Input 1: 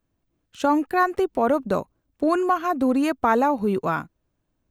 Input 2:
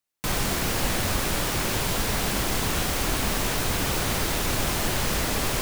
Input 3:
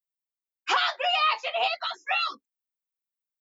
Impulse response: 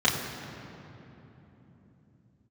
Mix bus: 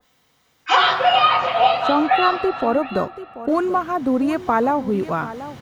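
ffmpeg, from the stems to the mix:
-filter_complex "[0:a]adelay=1250,volume=1.5dB,asplit=2[link_01][link_02];[link_02]volume=-14dB[link_03];[1:a]highpass=93,alimiter=limit=-20.5dB:level=0:latency=1:release=315,adelay=550,volume=-19dB,asplit=3[link_04][link_05][link_06];[link_04]atrim=end=1.86,asetpts=PTS-STARTPTS,afade=type=out:start_time=1.856:duration=0.004:curve=hsin[link_07];[link_05]atrim=start=1.86:end=3.48,asetpts=PTS-STARTPTS,volume=0[link_08];[link_06]atrim=start=3.48,asetpts=PTS-STARTPTS,afade=type=in:duration=0.004:curve=hsin[link_09];[link_07][link_08][link_09]concat=n=3:v=0:a=1,asplit=2[link_10][link_11];[link_11]volume=-7dB[link_12];[2:a]volume=1.5dB,asplit=3[link_13][link_14][link_15];[link_14]volume=-6dB[link_16];[link_15]volume=-8.5dB[link_17];[3:a]atrim=start_sample=2205[link_18];[link_12][link_16]amix=inputs=2:normalize=0[link_19];[link_19][link_18]afir=irnorm=-1:irlink=0[link_20];[link_03][link_17]amix=inputs=2:normalize=0,aecho=0:1:736:1[link_21];[link_01][link_10][link_13][link_20][link_21]amix=inputs=5:normalize=0,highshelf=frequency=3600:gain=-7,acompressor=mode=upward:threshold=-38dB:ratio=2.5,adynamicequalizer=threshold=0.0355:dfrequency=1900:dqfactor=0.7:tfrequency=1900:tqfactor=0.7:attack=5:release=100:ratio=0.375:range=3:mode=cutabove:tftype=highshelf"

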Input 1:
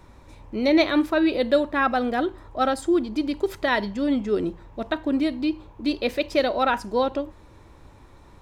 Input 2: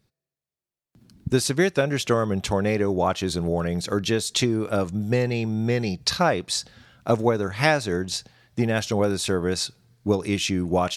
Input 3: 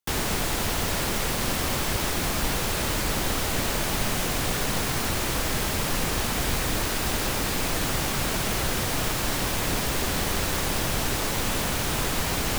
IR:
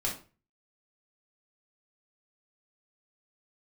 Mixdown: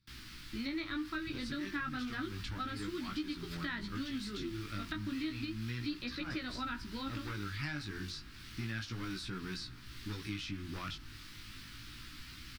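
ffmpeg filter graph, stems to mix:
-filter_complex "[0:a]agate=range=-27dB:threshold=-39dB:ratio=16:detection=peak,acompressor=threshold=-21dB:ratio=6,volume=-0.5dB,asplit=2[link_01][link_02];[1:a]asoftclip=type=tanh:threshold=-16dB,bandreject=frequency=87.83:width_type=h:width=4,bandreject=frequency=175.66:width_type=h:width=4,bandreject=frequency=263.49:width_type=h:width=4,bandreject=frequency=351.32:width_type=h:width=4,bandreject=frequency=439.15:width_type=h:width=4,bandreject=frequency=526.98:width_type=h:width=4,bandreject=frequency=614.81:width_type=h:width=4,bandreject=frequency=702.64:width_type=h:width=4,bandreject=frequency=790.47:width_type=h:width=4,bandreject=frequency=878.3:width_type=h:width=4,bandreject=frequency=966.13:width_type=h:width=4,bandreject=frequency=1053.96:width_type=h:width=4,bandreject=frequency=1141.79:width_type=h:width=4,bandreject=frequency=1229.62:width_type=h:width=4,bandreject=frequency=1317.45:width_type=h:width=4,bandreject=frequency=1405.28:width_type=h:width=4,bandreject=frequency=1493.11:width_type=h:width=4,bandreject=frequency=1580.94:width_type=h:width=4,bandreject=frequency=1668.77:width_type=h:width=4,bandreject=frequency=1756.6:width_type=h:width=4,bandreject=frequency=1844.43:width_type=h:width=4,bandreject=frequency=1932.26:width_type=h:width=4,bandreject=frequency=2020.09:width_type=h:width=4,bandreject=frequency=2107.92:width_type=h:width=4,bandreject=frequency=2195.75:width_type=h:width=4,bandreject=frequency=2283.58:width_type=h:width=4,bandreject=frequency=2371.41:width_type=h:width=4,bandreject=frequency=2459.24:width_type=h:width=4,bandreject=frequency=2547.07:width_type=h:width=4,bandreject=frequency=2634.9:width_type=h:width=4,bandreject=frequency=2722.73:width_type=h:width=4,bandreject=frequency=2810.56:width_type=h:width=4,bandreject=frequency=2898.39:width_type=h:width=4,bandreject=frequency=2986.22:width_type=h:width=4,bandreject=frequency=3074.05:width_type=h:width=4,bandreject=frequency=3161.88:width_type=h:width=4,bandreject=frequency=3249.71:width_type=h:width=4,bandreject=frequency=3337.54:width_type=h:width=4,bandreject=frequency=3425.37:width_type=h:width=4,volume=-3.5dB[link_03];[2:a]volume=-18.5dB[link_04];[link_02]apad=whole_len=483496[link_05];[link_03][link_05]sidechaincompress=threshold=-34dB:ratio=8:attack=16:release=101[link_06];[link_01][link_06][link_04]amix=inputs=3:normalize=0,firequalizer=gain_entry='entry(120,0);entry(170,-6);entry(300,-1);entry(450,-22);entry(660,-25);entry(1300,-1);entry(4700,4);entry(6700,-8)':delay=0.05:min_phase=1,flanger=delay=16:depth=4.5:speed=0.32,acrossover=split=540|1500[link_07][link_08][link_09];[link_07]acompressor=threshold=-39dB:ratio=4[link_10];[link_08]acompressor=threshold=-42dB:ratio=4[link_11];[link_09]acompressor=threshold=-46dB:ratio=4[link_12];[link_10][link_11][link_12]amix=inputs=3:normalize=0"

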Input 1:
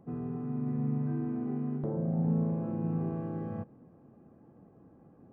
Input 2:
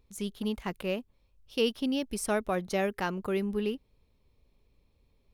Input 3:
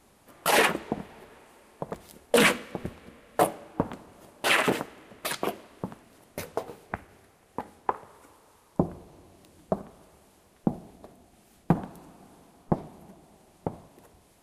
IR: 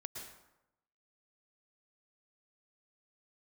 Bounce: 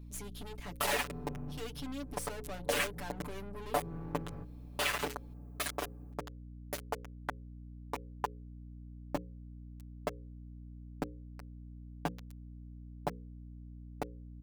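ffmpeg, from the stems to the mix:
-filter_complex "[0:a]aemphasis=mode=production:type=75kf,adelay=800,volume=-3dB[link_01];[1:a]highshelf=frequency=6300:gain=5.5,volume=2dB,asplit=2[link_02][link_03];[2:a]lowshelf=frequency=230:gain=-11.5,acompressor=threshold=-36dB:ratio=3,aeval=exprs='val(0)*gte(abs(val(0)),0.0178)':channel_layout=same,adelay=350,volume=0dB[link_04];[link_03]apad=whole_len=270264[link_05];[link_01][link_05]sidechaincompress=threshold=-46dB:ratio=8:attack=16:release=165[link_06];[link_06][link_02]amix=inputs=2:normalize=0,aeval=exprs='(tanh(79.4*val(0)+0.55)-tanh(0.55))/79.4':channel_layout=same,acompressor=threshold=-42dB:ratio=6,volume=0dB[link_07];[link_04][link_07]amix=inputs=2:normalize=0,bandreject=frequency=60:width_type=h:width=6,bandreject=frequency=120:width_type=h:width=6,bandreject=frequency=180:width_type=h:width=6,bandreject=frequency=240:width_type=h:width=6,bandreject=frequency=300:width_type=h:width=6,bandreject=frequency=360:width_type=h:width=6,bandreject=frequency=420:width_type=h:width=6,bandreject=frequency=480:width_type=h:width=6,bandreject=frequency=540:width_type=h:width=6,aecho=1:1:6.9:0.89,aeval=exprs='val(0)+0.00447*(sin(2*PI*60*n/s)+sin(2*PI*2*60*n/s)/2+sin(2*PI*3*60*n/s)/3+sin(2*PI*4*60*n/s)/4+sin(2*PI*5*60*n/s)/5)':channel_layout=same"

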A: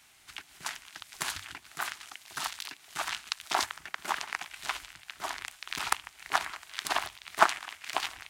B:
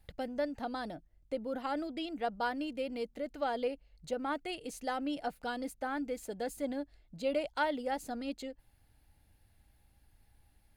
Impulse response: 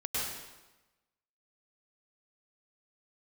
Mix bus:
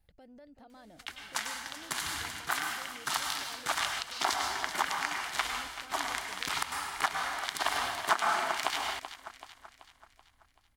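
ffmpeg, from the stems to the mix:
-filter_complex "[0:a]bandreject=frequency=2600:width=14,agate=range=-39dB:threshold=-47dB:ratio=16:detection=peak,acompressor=mode=upward:threshold=-55dB:ratio=2.5,adelay=700,volume=-0.5dB,asplit=3[link_01][link_02][link_03];[link_02]volume=-4.5dB[link_04];[link_03]volume=-11.5dB[link_05];[1:a]acompressor=threshold=-42dB:ratio=4,alimiter=level_in=15.5dB:limit=-24dB:level=0:latency=1:release=56,volume=-15.5dB,volume=-7dB,asplit=2[link_06][link_07];[link_07]volume=-9.5dB[link_08];[2:a]atrim=start_sample=2205[link_09];[link_04][link_09]afir=irnorm=-1:irlink=0[link_10];[link_05][link_08]amix=inputs=2:normalize=0,aecho=0:1:382|764|1146|1528|1910|2292|2674:1|0.49|0.24|0.118|0.0576|0.0282|0.0138[link_11];[link_01][link_06][link_10][link_11]amix=inputs=4:normalize=0,alimiter=limit=-13dB:level=0:latency=1:release=348"

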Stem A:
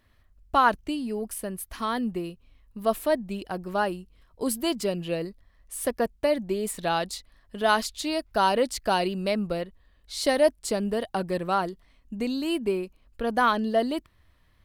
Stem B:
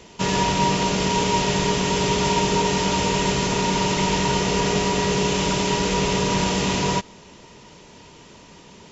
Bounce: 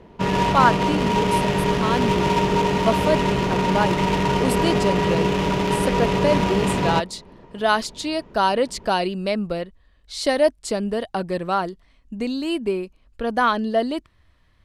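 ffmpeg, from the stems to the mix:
ffmpeg -i stem1.wav -i stem2.wav -filter_complex "[0:a]lowpass=8700,volume=3dB[link_01];[1:a]adynamicsmooth=sensitivity=1.5:basefreq=1200,volume=1.5dB[link_02];[link_01][link_02]amix=inputs=2:normalize=0" out.wav

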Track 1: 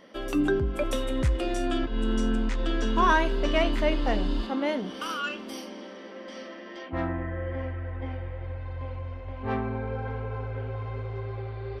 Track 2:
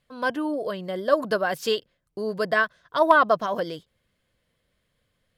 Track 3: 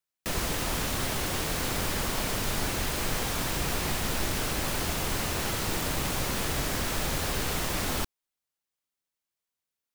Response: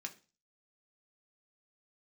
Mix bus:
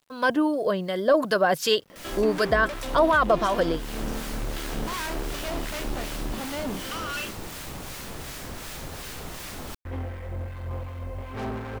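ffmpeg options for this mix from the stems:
-filter_complex "[0:a]acompressor=mode=upward:threshold=-52dB:ratio=2.5,volume=34dB,asoftclip=hard,volume=-34dB,adelay=1900,volume=-1dB,asplit=3[link_01][link_02][link_03];[link_01]atrim=end=7.31,asetpts=PTS-STARTPTS,afade=type=out:start_time=7.306:duration=0.004:curve=hsin[link_04];[link_02]atrim=start=7.31:end=9.85,asetpts=PTS-STARTPTS,volume=0[link_05];[link_03]atrim=start=9.85,asetpts=PTS-STARTPTS,afade=type=in:duration=0.004:curve=hsin[link_06];[link_04][link_05][link_06]concat=n=3:v=0:a=1[link_07];[1:a]alimiter=limit=-15.5dB:level=0:latency=1:release=11,volume=0dB,asplit=2[link_08][link_09];[2:a]adelay=1700,volume=-12dB[link_10];[link_09]apad=whole_len=513573[link_11];[link_10][link_11]sidechaincompress=threshold=-35dB:ratio=8:attack=16:release=390[link_12];[link_07][link_08][link_12]amix=inputs=3:normalize=0,acontrast=73,acrossover=split=1200[link_13][link_14];[link_13]aeval=exprs='val(0)*(1-0.5/2+0.5/2*cos(2*PI*2.7*n/s))':channel_layout=same[link_15];[link_14]aeval=exprs='val(0)*(1-0.5/2-0.5/2*cos(2*PI*2.7*n/s))':channel_layout=same[link_16];[link_15][link_16]amix=inputs=2:normalize=0,acrusher=bits=9:mix=0:aa=0.000001"

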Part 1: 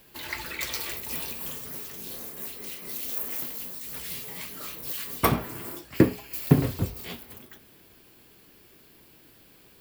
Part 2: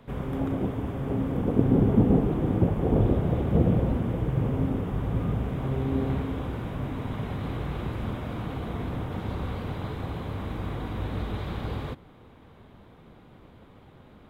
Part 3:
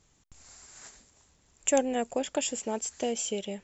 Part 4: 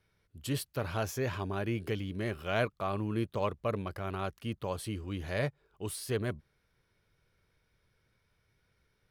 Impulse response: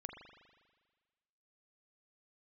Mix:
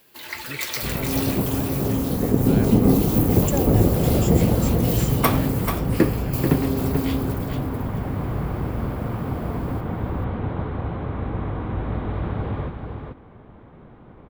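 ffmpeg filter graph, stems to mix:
-filter_complex "[0:a]lowshelf=frequency=130:gain=-11.5,volume=-0.5dB,asplit=2[link_01][link_02];[link_02]volume=-7dB[link_03];[1:a]lowpass=1800,adelay=750,volume=0.5dB,asplit=2[link_04][link_05];[link_05]volume=-5.5dB[link_06];[2:a]adelay=1800,volume=-7dB[link_07];[3:a]volume=-8.5dB[link_08];[link_03][link_06]amix=inputs=2:normalize=0,aecho=0:1:437:1[link_09];[link_01][link_04][link_07][link_08][link_09]amix=inputs=5:normalize=0,dynaudnorm=framelen=100:gausssize=7:maxgain=4dB"

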